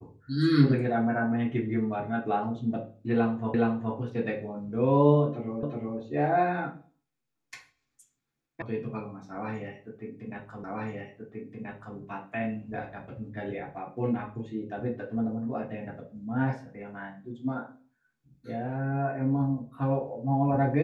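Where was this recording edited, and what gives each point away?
0:03.54: the same again, the last 0.42 s
0:05.63: the same again, the last 0.37 s
0:08.62: cut off before it has died away
0:10.64: the same again, the last 1.33 s

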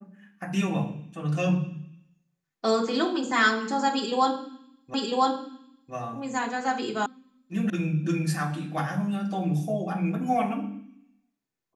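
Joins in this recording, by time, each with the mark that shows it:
0:04.94: the same again, the last 1 s
0:07.06: cut off before it has died away
0:07.70: cut off before it has died away

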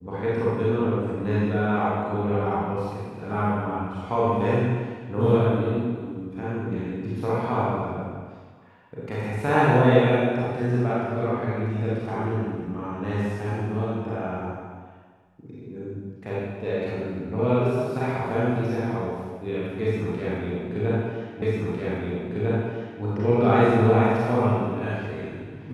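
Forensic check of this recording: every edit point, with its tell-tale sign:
0:21.42: the same again, the last 1.6 s

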